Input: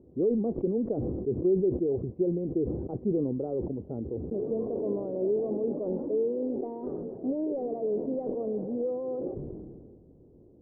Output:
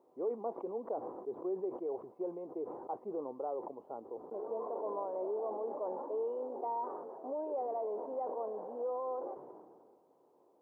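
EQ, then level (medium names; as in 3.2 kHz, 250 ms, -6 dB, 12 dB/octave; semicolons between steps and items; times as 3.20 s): resonant high-pass 970 Hz, resonance Q 3.7; +3.0 dB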